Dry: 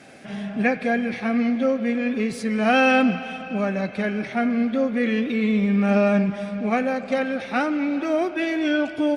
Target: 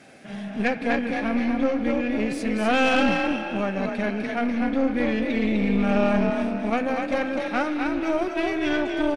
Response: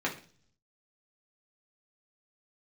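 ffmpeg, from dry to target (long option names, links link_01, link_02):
-filter_complex "[0:a]asplit=5[link_01][link_02][link_03][link_04][link_05];[link_02]adelay=250,afreqshift=38,volume=-4dB[link_06];[link_03]adelay=500,afreqshift=76,volume=-13.9dB[link_07];[link_04]adelay=750,afreqshift=114,volume=-23.8dB[link_08];[link_05]adelay=1000,afreqshift=152,volume=-33.7dB[link_09];[link_01][link_06][link_07][link_08][link_09]amix=inputs=5:normalize=0,aeval=exprs='(tanh(5.01*val(0)+0.6)-tanh(0.6))/5.01':channel_layout=same"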